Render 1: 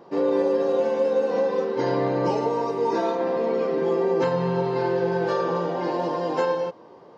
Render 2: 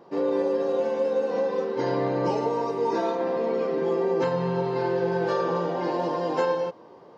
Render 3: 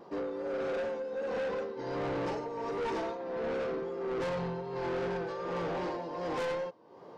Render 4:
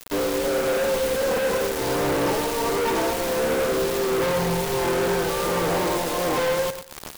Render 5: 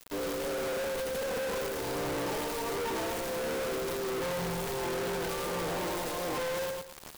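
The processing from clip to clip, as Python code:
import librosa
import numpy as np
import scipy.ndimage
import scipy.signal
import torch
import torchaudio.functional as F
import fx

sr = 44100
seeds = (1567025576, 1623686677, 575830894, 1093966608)

y1 = fx.rider(x, sr, range_db=10, speed_s=2.0)
y1 = F.gain(torch.from_numpy(y1), -2.0).numpy()
y2 = y1 * (1.0 - 0.75 / 2.0 + 0.75 / 2.0 * np.cos(2.0 * np.pi * 1.4 * (np.arange(len(y1)) / sr)))
y2 = fx.vibrato(y2, sr, rate_hz=2.6, depth_cents=32.0)
y2 = 10.0 ** (-31.0 / 20.0) * np.tanh(y2 / 10.0 ** (-31.0 / 20.0))
y3 = fx.dmg_noise_colour(y2, sr, seeds[0], colour='pink', level_db=-48.0)
y3 = fx.quant_companded(y3, sr, bits=2)
y3 = fx.echo_feedback(y3, sr, ms=111, feedback_pct=21, wet_db=-11.0)
y3 = F.gain(torch.from_numpy(y3), 3.0).numpy()
y4 = 10.0 ** (-32.0 / 20.0) * np.tanh(y3 / 10.0 ** (-32.0 / 20.0))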